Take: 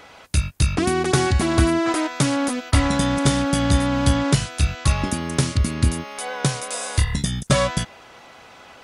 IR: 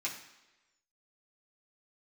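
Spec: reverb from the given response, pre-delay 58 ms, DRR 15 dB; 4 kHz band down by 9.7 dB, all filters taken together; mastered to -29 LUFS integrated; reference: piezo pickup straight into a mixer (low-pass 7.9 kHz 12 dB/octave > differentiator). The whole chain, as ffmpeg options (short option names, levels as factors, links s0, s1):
-filter_complex "[0:a]equalizer=f=4000:t=o:g=-5.5,asplit=2[s0][s1];[1:a]atrim=start_sample=2205,adelay=58[s2];[s1][s2]afir=irnorm=-1:irlink=0,volume=0.126[s3];[s0][s3]amix=inputs=2:normalize=0,lowpass=7900,aderivative,volume=2"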